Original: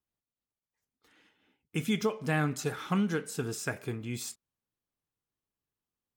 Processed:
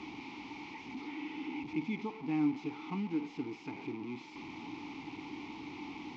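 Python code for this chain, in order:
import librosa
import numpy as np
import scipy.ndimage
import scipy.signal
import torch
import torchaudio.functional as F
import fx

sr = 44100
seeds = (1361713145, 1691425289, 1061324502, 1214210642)

y = fx.delta_mod(x, sr, bps=32000, step_db=-29.5)
y = fx.vowel_filter(y, sr, vowel='u')
y = fx.low_shelf(y, sr, hz=240.0, db=3.5)
y = y * 10.0 ** (4.5 / 20.0)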